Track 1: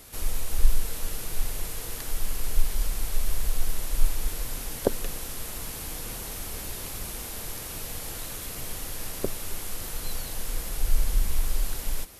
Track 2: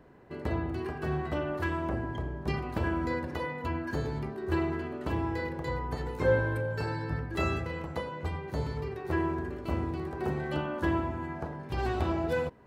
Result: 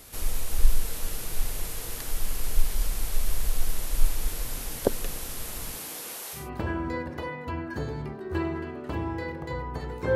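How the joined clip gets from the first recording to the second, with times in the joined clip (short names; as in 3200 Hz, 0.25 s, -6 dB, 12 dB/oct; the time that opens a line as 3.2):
track 1
5.76–6.5 HPF 170 Hz -> 780 Hz
6.41 switch to track 2 from 2.58 s, crossfade 0.18 s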